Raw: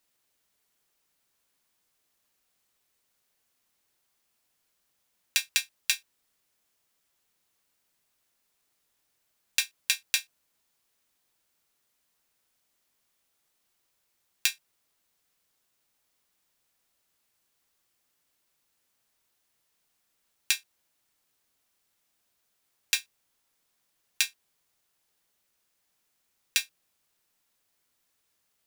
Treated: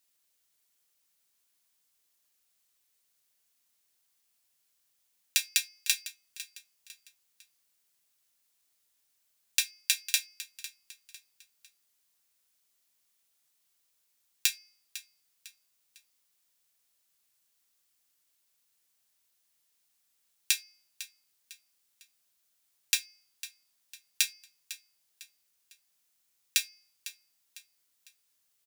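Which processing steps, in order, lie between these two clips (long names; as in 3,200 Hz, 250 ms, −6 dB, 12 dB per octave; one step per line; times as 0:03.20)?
high-shelf EQ 2,400 Hz +10.5 dB
hum removal 427.8 Hz, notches 14
on a send: repeating echo 502 ms, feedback 38%, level −15 dB
on the sum: level −8.5 dB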